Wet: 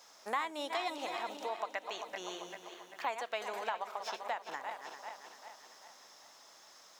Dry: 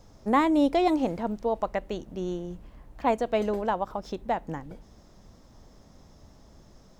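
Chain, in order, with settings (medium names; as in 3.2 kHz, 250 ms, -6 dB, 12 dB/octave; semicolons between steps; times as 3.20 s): backward echo that repeats 196 ms, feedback 68%, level -10 dB; high-pass 1.2 kHz 12 dB/octave; compression 2.5:1, threshold -44 dBFS, peak gain reduction 14 dB; trim +6.5 dB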